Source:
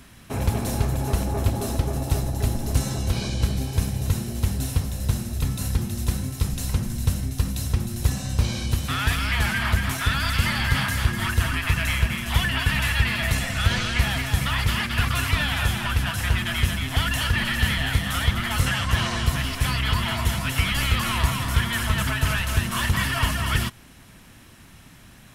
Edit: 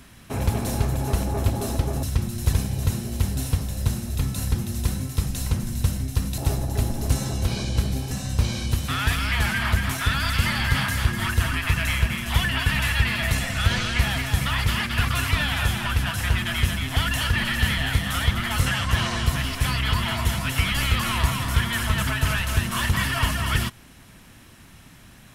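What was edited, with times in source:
2.03–3.76 swap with 7.61–8.11

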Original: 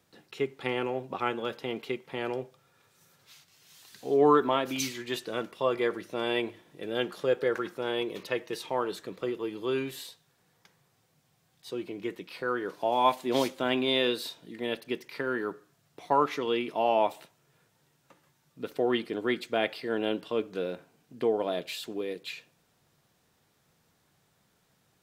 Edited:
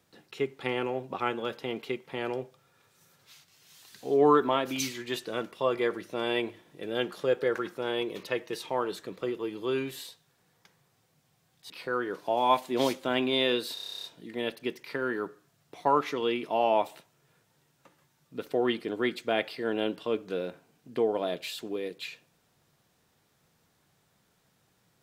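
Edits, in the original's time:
11.7–12.25 cut
14.29 stutter 0.03 s, 11 plays

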